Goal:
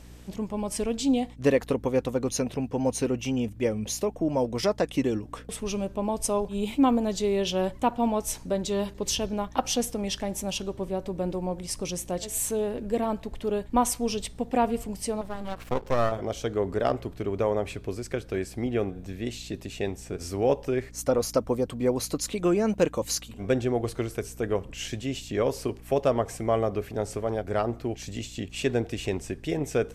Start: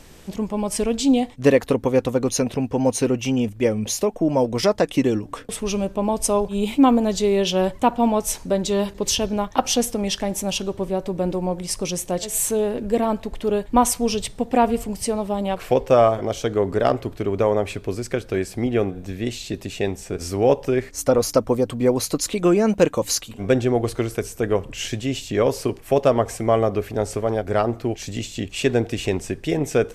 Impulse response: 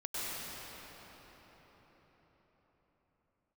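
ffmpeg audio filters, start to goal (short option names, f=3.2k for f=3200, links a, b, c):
-filter_complex "[0:a]asettb=1/sr,asplit=3[a][b][c];[a]atrim=end=15.214[d];[b]atrim=start=15.21:end=16.12,asetpts=PTS-STARTPTS,afade=t=in:d=0.004:c=qsin,afade=t=out:st=0.906:d=0.004:c=qsin,aeval=exprs='max(val(0),0)':c=same[e];[c]atrim=start=16.116[f];[d][e]acrossfade=d=0.004:c1=hsin:c2=qsin[g];[g][f]acrossfade=d=0.004:c1=qsin:c2=hsin,aeval=exprs='val(0)+0.01*(sin(2*PI*60*n/s)+sin(2*PI*2*60*n/s)/2+sin(2*PI*3*60*n/s)/3+sin(2*PI*4*60*n/s)/4+sin(2*PI*5*60*n/s)/5)':c=same,volume=-6.5dB"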